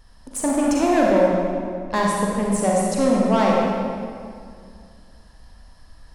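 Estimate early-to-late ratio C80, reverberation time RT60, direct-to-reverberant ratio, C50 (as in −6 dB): 0.0 dB, 2.2 s, −3.0 dB, −1.5 dB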